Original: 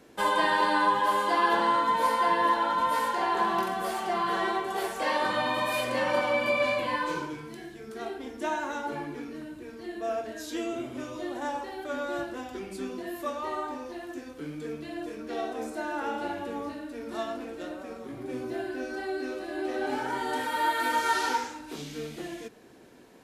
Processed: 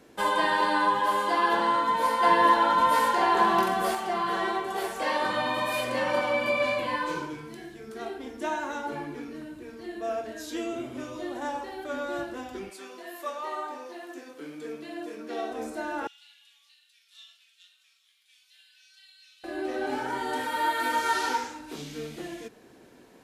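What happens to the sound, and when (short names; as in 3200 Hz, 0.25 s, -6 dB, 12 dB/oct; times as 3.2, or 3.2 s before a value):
2.23–3.95 gain +4.5 dB
12.69–15.49 HPF 670 Hz -> 190 Hz
16.07–19.44 ladder high-pass 2800 Hz, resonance 50%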